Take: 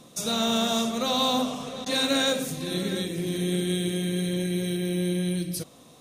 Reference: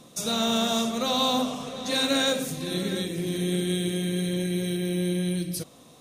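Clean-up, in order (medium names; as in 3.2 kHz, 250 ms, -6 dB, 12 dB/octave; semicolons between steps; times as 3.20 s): clip repair -14 dBFS; interpolate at 1.85 s, 10 ms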